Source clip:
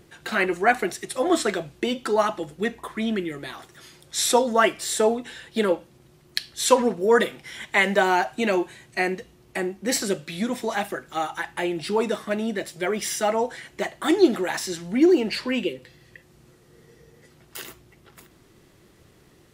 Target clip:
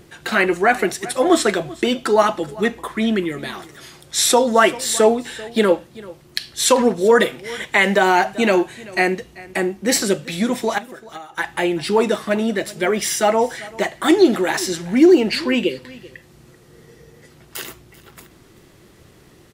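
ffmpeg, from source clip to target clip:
-filter_complex "[0:a]asettb=1/sr,asplit=3[s0][s1][s2];[s0]atrim=end=10.784[s3];[s1]atrim=start=10.78:end=11.38,asetpts=PTS-STARTPTS,afade=t=in:d=0.004:c=qsin,afade=t=out:st=0.596:d=0.004:c=qsin,acompressor=threshold=0.00891:ratio=6[s4];[s2]atrim=start=11.376[s5];[s3][s4]acrossfade=d=0.004:c1=hsin:c2=qsin[s6];[s6][s5]acrossfade=d=0.004:c1=qsin:c2=hsin,aecho=1:1:388:0.0944,alimiter=level_in=2.66:limit=0.891:release=50:level=0:latency=1,volume=0.794"

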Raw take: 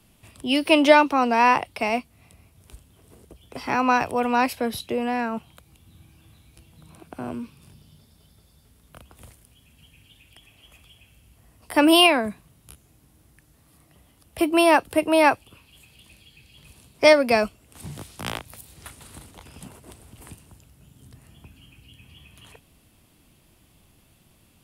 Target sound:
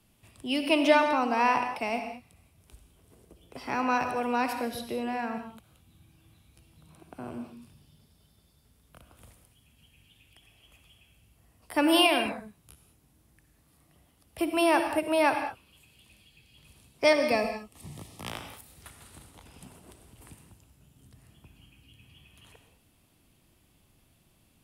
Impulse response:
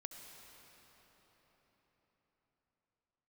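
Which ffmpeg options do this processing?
-filter_complex "[0:a]asettb=1/sr,asplit=3[s0][s1][s2];[s0]atrim=end=17.134[s3];[s1]atrim=start=17.13:end=18.3,asetpts=PTS-STARTPTS,afade=t=in:d=0.004:c=qsin,afade=t=out:st=1.166:d=0.004:c=qsin,asuperstop=centerf=1500:order=12:qfactor=5.1[s4];[s2]atrim=start=18.296[s5];[s3][s4]acrossfade=d=0.004:c1=hsin:c2=qsin[s6];[s6][s5]acrossfade=d=0.004:c1=qsin:c2=hsin[s7];[1:a]atrim=start_sample=2205,afade=t=out:st=0.31:d=0.01,atrim=end_sample=14112,asetrate=52920,aresample=44100[s8];[s7][s8]afir=irnorm=-1:irlink=0"

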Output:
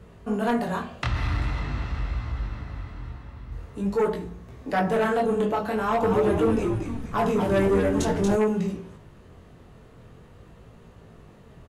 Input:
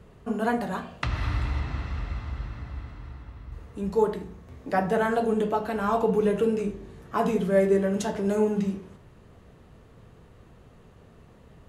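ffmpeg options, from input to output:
-filter_complex "[0:a]flanger=delay=17.5:depth=7.7:speed=0.46,aeval=exprs='0.211*(cos(1*acos(clip(val(0)/0.211,-1,1)))-cos(1*PI/2))+0.0422*(cos(5*acos(clip(val(0)/0.211,-1,1)))-cos(5*PI/2))':c=same,asplit=3[s0][s1][s2];[s0]afade=t=out:st=6.02:d=0.02[s3];[s1]asplit=7[s4][s5][s6][s7][s8][s9][s10];[s5]adelay=234,afreqshift=-110,volume=0.562[s11];[s6]adelay=468,afreqshift=-220,volume=0.263[s12];[s7]adelay=702,afreqshift=-330,volume=0.124[s13];[s8]adelay=936,afreqshift=-440,volume=0.0582[s14];[s9]adelay=1170,afreqshift=-550,volume=0.0275[s15];[s10]adelay=1404,afreqshift=-660,volume=0.0129[s16];[s4][s11][s12][s13][s14][s15][s16]amix=inputs=7:normalize=0,afade=t=in:st=6.02:d=0.02,afade=t=out:st=8.35:d=0.02[s17];[s2]afade=t=in:st=8.35:d=0.02[s18];[s3][s17][s18]amix=inputs=3:normalize=0"

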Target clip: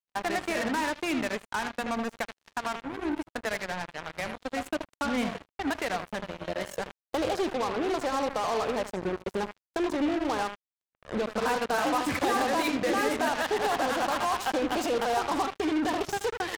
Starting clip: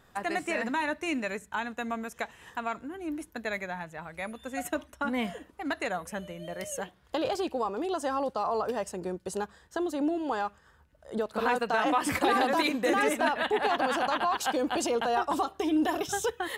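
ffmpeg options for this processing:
-filter_complex "[0:a]aeval=exprs='val(0)+0.5*0.00891*sgn(val(0))':c=same,acompressor=threshold=0.00562:ratio=1.5,aemphasis=mode=reproduction:type=50fm,asplit=2[s0][s1];[s1]adelay=79,lowpass=f=2800:p=1,volume=0.398,asplit=2[s2][s3];[s3]adelay=79,lowpass=f=2800:p=1,volume=0.22,asplit=2[s4][s5];[s5]adelay=79,lowpass=f=2800:p=1,volume=0.22[s6];[s2][s4][s6]amix=inputs=3:normalize=0[s7];[s0][s7]amix=inputs=2:normalize=0,acrusher=bits=5:mix=0:aa=0.5,volume=2"

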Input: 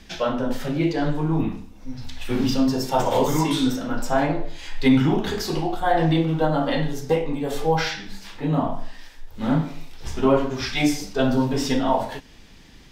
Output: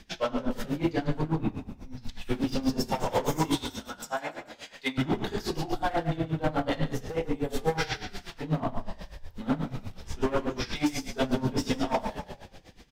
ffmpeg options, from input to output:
-filter_complex "[0:a]asettb=1/sr,asplit=3[s0][s1][s2];[s0]atrim=end=3.554[s3];[s1]atrim=start=3.55:end=4.98,asetpts=PTS-STARTPTS,afade=t=in:d=0.004:c=qsin,afade=t=out:st=1.426:d=0.004:c=qsin,highpass=f=1300:p=1[s4];[s2]atrim=start=4.976[s5];[s3][s4]acrossfade=d=0.004:c1=hsin:c2=qsin[s6];[s6][s5]acrossfade=d=0.004:c1=qsin:c2=hsin,asettb=1/sr,asplit=3[s7][s8][s9];[s7]atrim=end=5.974[s10];[s8]atrim=start=5.97:end=6.44,asetpts=PTS-STARTPTS,afade=t=in:d=0.004:c=qsin,afade=t=out:st=0.466:d=0.004:c=qsin,acompressor=threshold=0.1:ratio=6[s11];[s9]atrim=start=6.436[s12];[s10][s11]acrossfade=d=0.004:c1=hsin:c2=qsin[s13];[s13][s12]acrossfade=d=0.004:c1=qsin:c2=hsin,volume=7.94,asoftclip=hard,volume=0.126,asplit=7[s14][s15][s16][s17][s18][s19][s20];[s15]adelay=144,afreqshift=-31,volume=0.355[s21];[s16]adelay=288,afreqshift=-62,volume=0.174[s22];[s17]adelay=432,afreqshift=-93,volume=0.0851[s23];[s18]adelay=576,afreqshift=-124,volume=0.0417[s24];[s19]adelay=720,afreqshift=-155,volume=0.0204[s25];[s20]adelay=864,afreqshift=-186,volume=0.01[s26];[s14][s21][s22][s23][s24][s25][s26]amix=inputs=7:normalize=0,aeval=exprs='val(0)*pow(10,-18*(0.5-0.5*cos(2*PI*8.2*n/s))/20)':c=same,volume=0.891"

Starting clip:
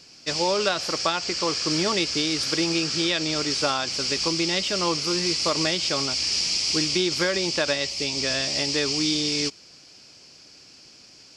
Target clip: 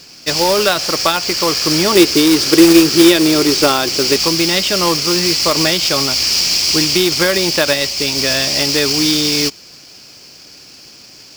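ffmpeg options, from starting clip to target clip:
-filter_complex "[0:a]asettb=1/sr,asplit=3[s0][s1][s2];[s0]atrim=end=1.954[s3];[s1]atrim=start=1.95:end=4.16,asetpts=PTS-STARTPTS,afade=t=in:d=0.004:c=qsin,afade=t=out:st=2.206:d=0.004:c=qsin,equalizer=f=360:w=2.2:g=12[s4];[s2]atrim=start=4.156[s5];[s3][s4]acrossfade=d=0.004:c1=hsin:c2=qsin[s6];[s6][s5]acrossfade=d=0.004:c1=qsin:c2=hsin,acontrast=83,acrusher=bits=2:mode=log:mix=0:aa=0.000001,volume=1.33"

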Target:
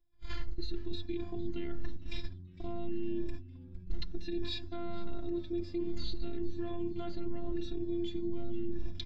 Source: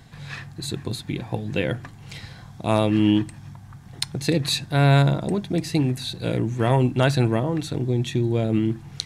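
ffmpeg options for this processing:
-filter_complex "[0:a]afftfilt=real='re*pow(10,12/40*sin(2*PI*(1.8*log(max(b,1)*sr/1024/100)/log(2)-(-0.89)*(pts-256)/sr)))':imag='im*pow(10,12/40*sin(2*PI*(1.8*log(max(b,1)*sr/1024/100)/log(2)-(-0.89)*(pts-256)/sr)))':win_size=1024:overlap=0.75,acrossover=split=4400[s0][s1];[s1]acompressor=threshold=0.00708:ratio=4:attack=1:release=60[s2];[s0][s2]amix=inputs=2:normalize=0,agate=range=0.0112:threshold=0.0141:ratio=16:detection=peak,aemphasis=mode=reproduction:type=riaa,bandreject=f=60:t=h:w=6,bandreject=f=120:t=h:w=6,bandreject=f=180:t=h:w=6,bandreject=f=240:t=h:w=6,bandreject=f=300:t=h:w=6,bandreject=f=360:t=h:w=6,bandreject=f=420:t=h:w=6,bandreject=f=480:t=h:w=6,bandreject=f=540:t=h:w=6,afftfilt=real='hypot(re,im)*cos(PI*b)':imag='0':win_size=512:overlap=0.75,aecho=1:1:5.6:0.39,areverse,acompressor=threshold=0.0355:ratio=5,areverse,alimiter=level_in=2.37:limit=0.0631:level=0:latency=1:release=359,volume=0.422,equalizer=f=760:t=o:w=2.4:g=-12.5,asplit=5[s3][s4][s5][s6][s7];[s4]adelay=457,afreqshift=-91,volume=0.0891[s8];[s5]adelay=914,afreqshift=-182,volume=0.0462[s9];[s6]adelay=1371,afreqshift=-273,volume=0.024[s10];[s7]adelay=1828,afreqshift=-364,volume=0.0126[s11];[s3][s8][s9][s10][s11]amix=inputs=5:normalize=0,aresample=16000,aresample=44100,volume=3.35"

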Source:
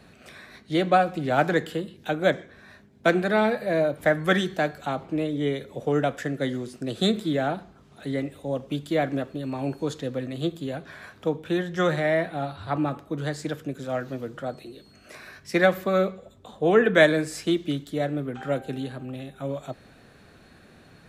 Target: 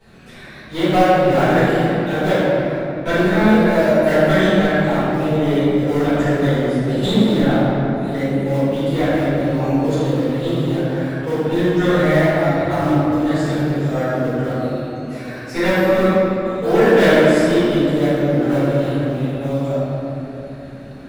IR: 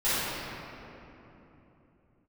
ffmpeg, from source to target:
-filter_complex "[0:a]asplit=2[s0][s1];[s1]acrusher=samples=32:mix=1:aa=0.000001:lfo=1:lforange=51.2:lforate=0.7,volume=0.299[s2];[s0][s2]amix=inputs=2:normalize=0,asoftclip=type=tanh:threshold=0.168[s3];[1:a]atrim=start_sample=2205[s4];[s3][s4]afir=irnorm=-1:irlink=0,volume=0.531"

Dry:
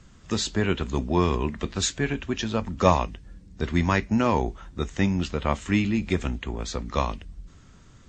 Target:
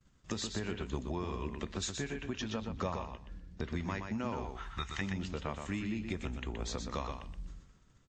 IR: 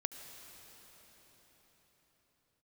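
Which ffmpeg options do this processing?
-filter_complex "[0:a]asettb=1/sr,asplit=3[s0][s1][s2];[s0]atrim=end=2.424[s3];[s1]atrim=start=2.42:end=3.71,asetpts=PTS-STARTPTS,afade=t=in:d=0.004:c=qsin,afade=t=out:st=1.286:d=0.004:c=qsin,lowpass=5900[s4];[s2]atrim=start=3.706[s5];[s3][s4]acrossfade=d=0.004:c1=hsin:c2=qsin[s6];[s6][s5]acrossfade=d=0.004:c1=qsin:c2=hsin,agate=range=0.0224:threshold=0.01:ratio=3:detection=peak,asettb=1/sr,asplit=3[s7][s8][s9];[s7]atrim=end=4.444[s10];[s8]atrim=start=4.44:end=5.01,asetpts=PTS-STARTPTS,afade=t=in:d=0.004:c=qsin,afade=t=out:st=0.566:d=0.004:c=qsin,equalizer=f=250:t=o:w=1:g=-10,equalizer=f=500:t=o:w=1:g=-11,equalizer=f=1000:t=o:w=1:g=9,equalizer=f=2000:t=o:w=1:g=7,equalizer=f=4000:t=o:w=1:g=6[s11];[s9]atrim=start=5.006[s12];[s10][s11]acrossfade=d=0.004:c1=hsin:c2=qsin[s13];[s13][s12]acrossfade=d=0.004:c1=qsin:c2=hsin,acompressor=threshold=0.0141:ratio=4,asplit=2[s14][s15];[s15]aecho=0:1:123|246|369:0.501|0.0902|0.0162[s16];[s14][s16]amix=inputs=2:normalize=0"

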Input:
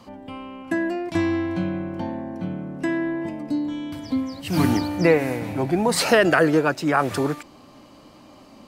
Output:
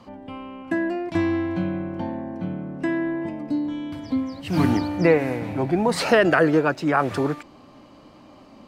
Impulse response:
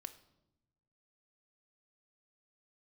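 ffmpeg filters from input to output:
-af "highshelf=f=5800:g=-12"

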